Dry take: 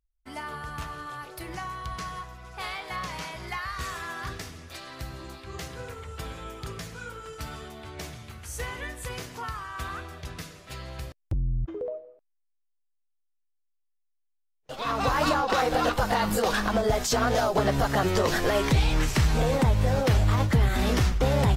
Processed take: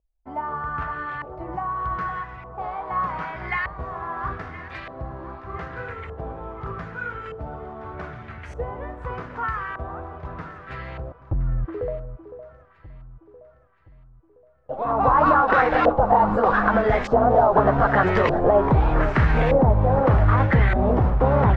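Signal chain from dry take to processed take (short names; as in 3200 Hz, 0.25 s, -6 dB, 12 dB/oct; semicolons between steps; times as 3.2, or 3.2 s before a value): LFO low-pass saw up 0.82 Hz 610–2200 Hz; echo with dull and thin repeats by turns 0.51 s, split 950 Hz, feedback 64%, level -11.5 dB; gain +3.5 dB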